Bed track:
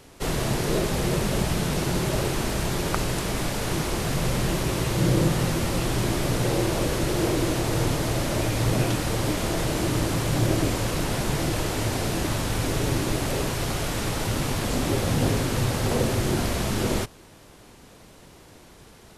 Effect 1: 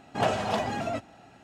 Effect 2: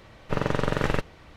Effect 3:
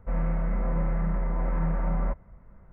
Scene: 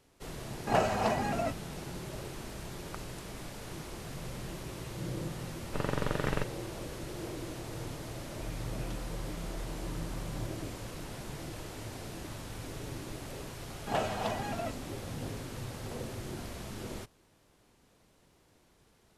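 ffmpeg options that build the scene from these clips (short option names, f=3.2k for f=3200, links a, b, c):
-filter_complex "[1:a]asplit=2[a][b];[0:a]volume=-16.5dB[c];[a]equalizer=f=3.4k:w=5.2:g=-11.5[d];[2:a]dynaudnorm=f=190:g=3:m=11.5dB[e];[3:a]acompressor=threshold=-34dB:ratio=6:attack=3.2:release=140:knee=1:detection=peak[f];[d]atrim=end=1.43,asetpts=PTS-STARTPTS,volume=-1.5dB,afade=t=in:d=0.004:c=hsin,afade=t=out:st=1.426:d=0.004:c=hsin,adelay=520[g];[e]atrim=end=1.36,asetpts=PTS-STARTPTS,volume=-13.5dB,afade=t=in:d=0.004:c=hsin,afade=t=out:st=1.356:d=0.004:c=hsin,adelay=5430[h];[f]atrim=end=2.72,asetpts=PTS-STARTPTS,volume=-4dB,afade=t=in:d=0.004:c=hsin,afade=t=out:st=2.716:d=0.004:c=hsin,adelay=367794S[i];[b]atrim=end=1.43,asetpts=PTS-STARTPTS,volume=-6dB,afade=t=in:d=0.004:c=hsin,afade=t=out:st=1.426:d=0.004:c=hsin,adelay=13720[j];[c][g][h][i][j]amix=inputs=5:normalize=0"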